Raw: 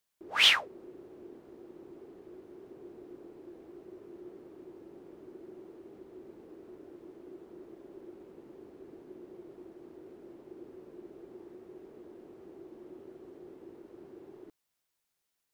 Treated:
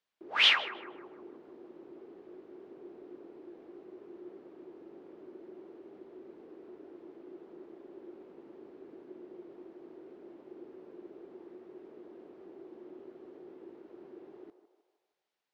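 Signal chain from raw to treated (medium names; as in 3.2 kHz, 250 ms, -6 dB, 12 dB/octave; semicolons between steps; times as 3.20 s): three-band isolator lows -13 dB, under 180 Hz, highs -19 dB, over 4.9 kHz; on a send: band-passed feedback delay 155 ms, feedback 59%, band-pass 790 Hz, level -10 dB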